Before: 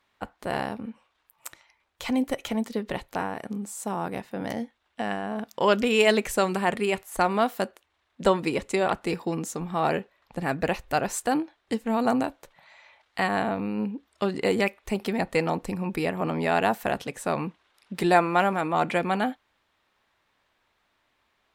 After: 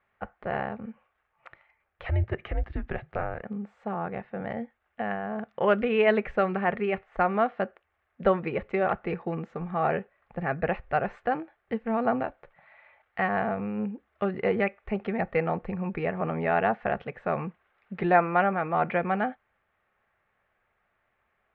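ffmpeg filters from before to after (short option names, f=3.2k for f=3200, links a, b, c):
-filter_complex "[0:a]asettb=1/sr,asplit=3[a][b][c];[a]atrim=end=2.064[d];[b]atrim=start=2.06:end=3.43,asetpts=PTS-STARTPTS,afade=t=in:d=0.004:c=qsin,afade=t=out:st=1.366:d=0.004:c=qsin,afreqshift=-170[e];[c]atrim=start=3.426[f];[d][e]acrossfade=d=0.004:c1=hsin:c2=qsin[g];[g][f]acrossfade=d=0.004:c1=qsin:c2=hsin,lowpass=f=2.2k:w=0.5412,lowpass=f=2.2k:w=1.3066,equalizer=f=290:t=o:w=0.34:g=-13,bandreject=f=970:w=6"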